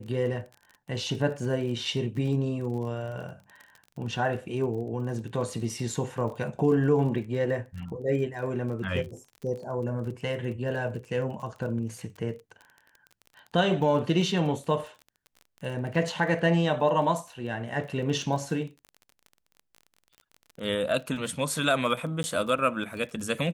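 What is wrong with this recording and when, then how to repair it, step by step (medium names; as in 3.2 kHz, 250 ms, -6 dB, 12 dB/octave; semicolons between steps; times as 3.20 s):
crackle 30 per s -37 dBFS
22.23–22.24 s: dropout 10 ms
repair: de-click; interpolate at 22.23 s, 10 ms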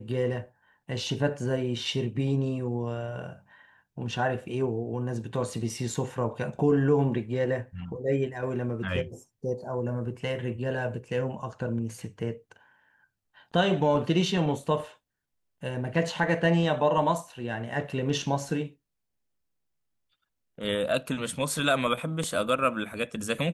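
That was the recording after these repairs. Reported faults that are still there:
nothing left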